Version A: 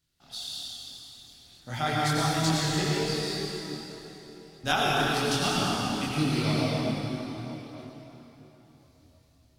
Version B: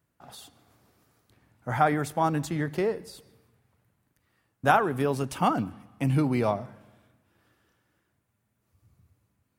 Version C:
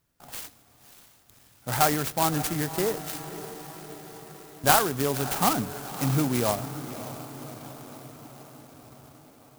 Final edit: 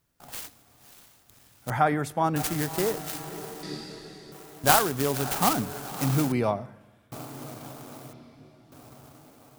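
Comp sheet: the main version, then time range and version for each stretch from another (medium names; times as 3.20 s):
C
1.70–2.36 s: from B
3.63–4.32 s: from A
6.32–7.12 s: from B
8.13–8.72 s: from A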